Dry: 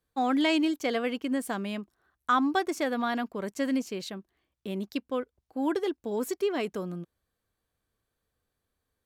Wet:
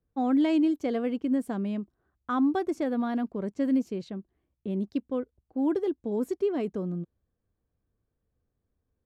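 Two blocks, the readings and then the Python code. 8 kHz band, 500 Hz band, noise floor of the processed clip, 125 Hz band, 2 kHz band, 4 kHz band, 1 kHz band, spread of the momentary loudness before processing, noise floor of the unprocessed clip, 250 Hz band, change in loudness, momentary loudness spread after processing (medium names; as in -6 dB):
under -10 dB, +0.5 dB, -81 dBFS, +4.5 dB, -9.5 dB, under -10 dB, -5.0 dB, 14 LU, -84 dBFS, +3.0 dB, +1.0 dB, 12 LU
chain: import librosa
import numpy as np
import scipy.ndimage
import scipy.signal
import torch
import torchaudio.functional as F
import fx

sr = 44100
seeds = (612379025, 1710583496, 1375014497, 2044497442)

y = fx.tilt_shelf(x, sr, db=9.0, hz=690.0)
y = fx.env_lowpass(y, sr, base_hz=2800.0, full_db=-21.0)
y = F.gain(torch.from_numpy(y), -3.0).numpy()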